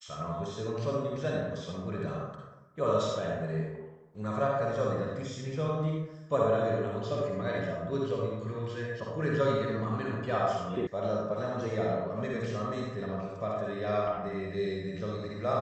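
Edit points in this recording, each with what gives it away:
10.87 s: sound stops dead

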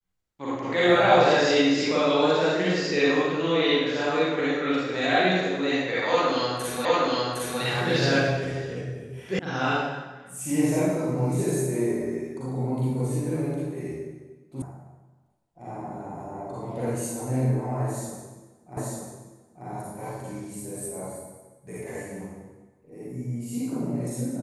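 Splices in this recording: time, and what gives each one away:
6.85 s: repeat of the last 0.76 s
9.39 s: sound stops dead
14.62 s: sound stops dead
18.77 s: repeat of the last 0.89 s

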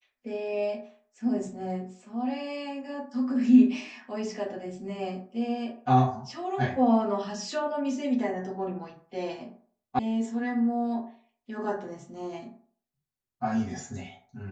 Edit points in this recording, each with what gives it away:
9.99 s: sound stops dead

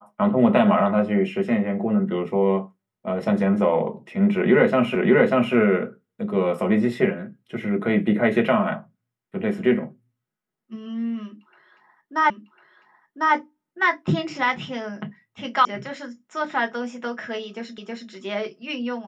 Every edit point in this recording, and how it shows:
4.95 s: repeat of the last 0.59 s
12.30 s: repeat of the last 1.05 s
15.65 s: sound stops dead
17.78 s: repeat of the last 0.32 s

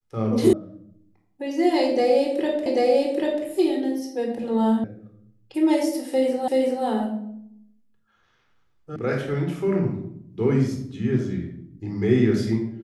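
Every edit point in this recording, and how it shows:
0.53 s: sound stops dead
2.66 s: repeat of the last 0.79 s
4.84 s: sound stops dead
6.48 s: repeat of the last 0.38 s
8.96 s: sound stops dead

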